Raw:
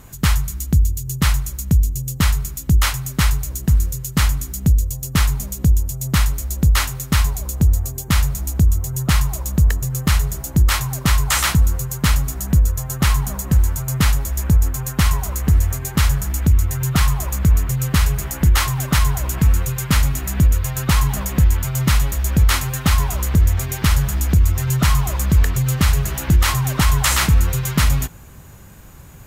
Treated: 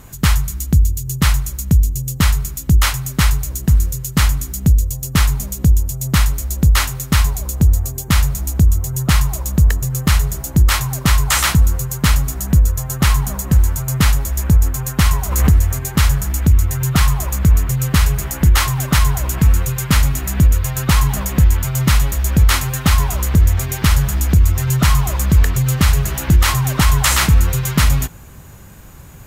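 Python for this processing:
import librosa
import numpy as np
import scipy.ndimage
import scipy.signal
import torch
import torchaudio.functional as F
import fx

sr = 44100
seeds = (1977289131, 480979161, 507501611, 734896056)

y = fx.pre_swell(x, sr, db_per_s=49.0, at=(15.29, 15.78), fade=0.02)
y = F.gain(torch.from_numpy(y), 2.5).numpy()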